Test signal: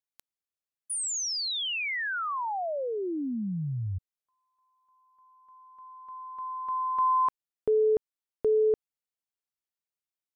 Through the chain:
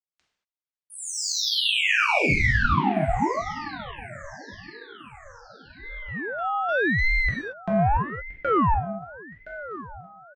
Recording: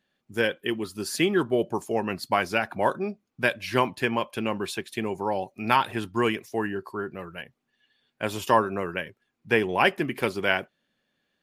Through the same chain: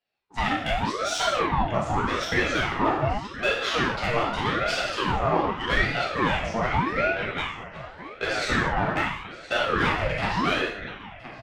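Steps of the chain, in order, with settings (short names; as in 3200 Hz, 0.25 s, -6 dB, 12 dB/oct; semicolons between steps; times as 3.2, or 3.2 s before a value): low shelf 180 Hz -11 dB; gate -51 dBFS, range -18 dB; LPF 7100 Hz 24 dB/oct; dynamic EQ 350 Hz, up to +5 dB, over -37 dBFS, Q 0.72; compressor 6:1, threshold -26 dBFS; feedback echo 1.019 s, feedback 49%, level -19 dB; overdrive pedal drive 22 dB, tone 2400 Hz, clips at -11 dBFS; HPF 140 Hz; non-linear reverb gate 0.26 s falling, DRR -5 dB; ring modulator with a swept carrier 650 Hz, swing 65%, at 0.84 Hz; gain -4 dB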